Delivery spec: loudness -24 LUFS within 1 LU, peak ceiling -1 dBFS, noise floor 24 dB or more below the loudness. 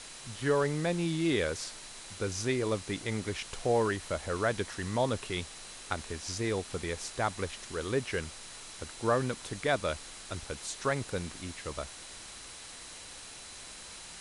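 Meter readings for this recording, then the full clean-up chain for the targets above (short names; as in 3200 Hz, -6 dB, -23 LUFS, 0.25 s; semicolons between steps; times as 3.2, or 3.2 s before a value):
steady tone 4000 Hz; tone level -56 dBFS; noise floor -47 dBFS; noise floor target -58 dBFS; loudness -33.5 LUFS; peak -14.5 dBFS; loudness target -24.0 LUFS
-> notch 4000 Hz, Q 30; noise print and reduce 11 dB; gain +9.5 dB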